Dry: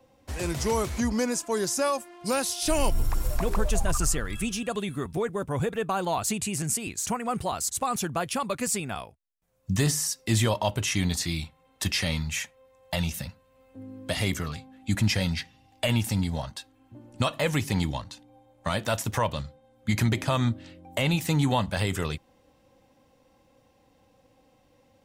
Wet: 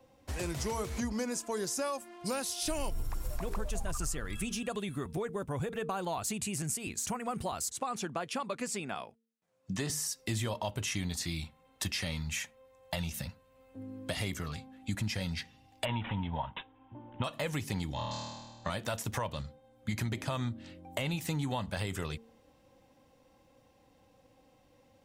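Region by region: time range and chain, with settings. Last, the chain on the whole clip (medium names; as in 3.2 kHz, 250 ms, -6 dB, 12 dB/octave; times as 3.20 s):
7.72–9.90 s: high-pass 190 Hz + distance through air 53 m
15.85–17.24 s: peaking EQ 930 Hz +15 dB 0.36 oct + careless resampling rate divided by 6×, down none, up filtered
17.94–18.70 s: elliptic low-pass 7.4 kHz + flutter echo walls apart 4.4 m, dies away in 1.3 s
whole clip: de-hum 227.6 Hz, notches 2; compression 3:1, threshold -31 dBFS; trim -2 dB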